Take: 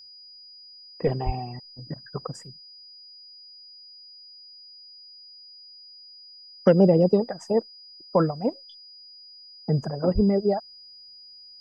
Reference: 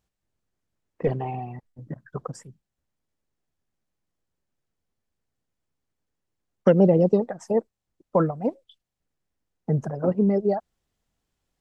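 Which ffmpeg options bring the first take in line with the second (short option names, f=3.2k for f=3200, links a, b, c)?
-filter_complex "[0:a]bandreject=f=4.9k:w=30,asplit=3[a][b][c];[a]afade=t=out:st=1.25:d=0.02[d];[b]highpass=f=140:w=0.5412,highpass=f=140:w=1.3066,afade=t=in:st=1.25:d=0.02,afade=t=out:st=1.37:d=0.02[e];[c]afade=t=in:st=1.37:d=0.02[f];[d][e][f]amix=inputs=3:normalize=0,asplit=3[g][h][i];[g]afade=t=out:st=10.14:d=0.02[j];[h]highpass=f=140:w=0.5412,highpass=f=140:w=1.3066,afade=t=in:st=10.14:d=0.02,afade=t=out:st=10.26:d=0.02[k];[i]afade=t=in:st=10.26:d=0.02[l];[j][k][l]amix=inputs=3:normalize=0"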